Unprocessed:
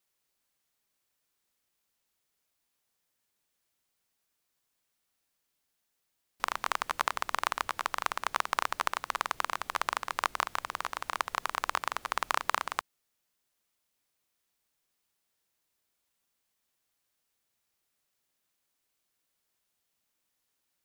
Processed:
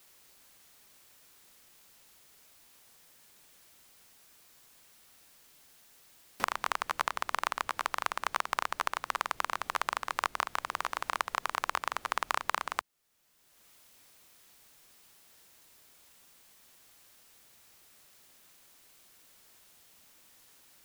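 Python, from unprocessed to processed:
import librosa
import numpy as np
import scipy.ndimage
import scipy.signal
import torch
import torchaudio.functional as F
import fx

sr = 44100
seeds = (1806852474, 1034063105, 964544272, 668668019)

y = fx.band_squash(x, sr, depth_pct=70)
y = F.gain(torch.from_numpy(y), -1.0).numpy()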